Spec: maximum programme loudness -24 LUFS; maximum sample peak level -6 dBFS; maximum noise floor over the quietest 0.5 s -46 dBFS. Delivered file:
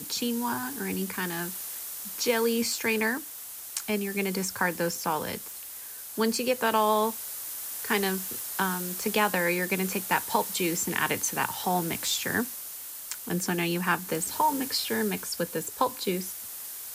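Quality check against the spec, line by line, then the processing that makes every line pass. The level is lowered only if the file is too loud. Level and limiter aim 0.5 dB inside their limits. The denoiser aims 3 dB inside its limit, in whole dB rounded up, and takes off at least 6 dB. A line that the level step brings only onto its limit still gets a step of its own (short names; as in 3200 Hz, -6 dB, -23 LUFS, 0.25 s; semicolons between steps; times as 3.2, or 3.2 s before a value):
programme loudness -28.5 LUFS: OK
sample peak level -10.0 dBFS: OK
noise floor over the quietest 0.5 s -41 dBFS: fail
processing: denoiser 8 dB, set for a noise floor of -41 dBFS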